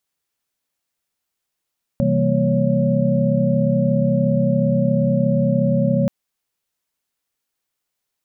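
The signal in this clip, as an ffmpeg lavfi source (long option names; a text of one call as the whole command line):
ffmpeg -f lavfi -i "aevalsrc='0.0891*(sin(2*PI*130.81*t)+sin(2*PI*164.81*t)+sin(2*PI*196*t)+sin(2*PI*233.08*t)+sin(2*PI*554.37*t))':duration=4.08:sample_rate=44100" out.wav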